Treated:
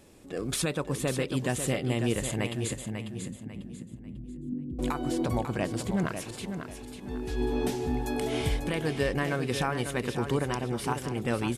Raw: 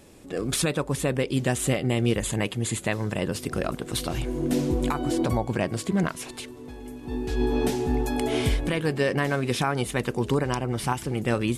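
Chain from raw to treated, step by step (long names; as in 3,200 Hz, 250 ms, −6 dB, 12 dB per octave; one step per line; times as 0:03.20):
0:02.73–0:04.79: transistor ladder low-pass 270 Hz, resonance 50%
repeating echo 545 ms, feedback 31%, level −8 dB
level −4.5 dB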